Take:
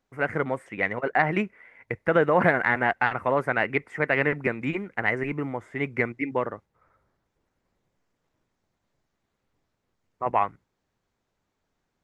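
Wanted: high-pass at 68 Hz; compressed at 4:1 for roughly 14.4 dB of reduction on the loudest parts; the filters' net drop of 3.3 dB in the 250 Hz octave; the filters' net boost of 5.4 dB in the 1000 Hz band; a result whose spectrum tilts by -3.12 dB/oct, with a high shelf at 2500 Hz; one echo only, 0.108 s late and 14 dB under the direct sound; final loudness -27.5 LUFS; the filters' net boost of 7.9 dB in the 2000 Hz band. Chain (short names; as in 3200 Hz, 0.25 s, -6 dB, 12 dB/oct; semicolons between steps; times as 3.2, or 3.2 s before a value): HPF 68 Hz; bell 250 Hz -5 dB; bell 1000 Hz +5 dB; bell 2000 Hz +5 dB; high shelf 2500 Hz +7 dB; compressor 4:1, threshold -28 dBFS; echo 0.108 s -14 dB; gain +3.5 dB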